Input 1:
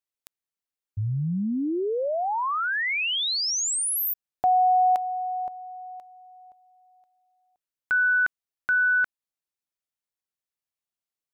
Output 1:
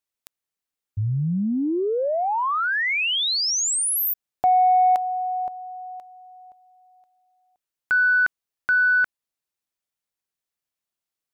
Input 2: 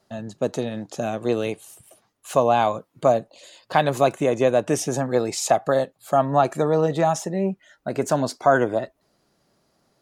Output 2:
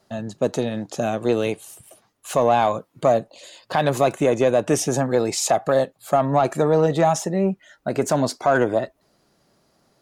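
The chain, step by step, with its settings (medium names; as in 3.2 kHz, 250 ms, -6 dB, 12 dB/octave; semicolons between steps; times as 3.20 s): in parallel at -5 dB: saturation -16 dBFS; on the sum: loudness maximiser +7 dB; trim -7.5 dB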